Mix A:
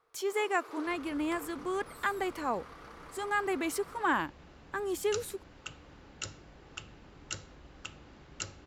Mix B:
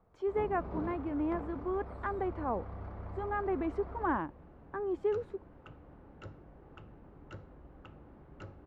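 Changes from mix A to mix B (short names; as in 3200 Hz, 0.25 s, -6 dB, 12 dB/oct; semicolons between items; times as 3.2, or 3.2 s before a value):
first sound: remove rippled Chebyshev high-pass 320 Hz, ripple 9 dB; master: add LPF 1000 Hz 12 dB/oct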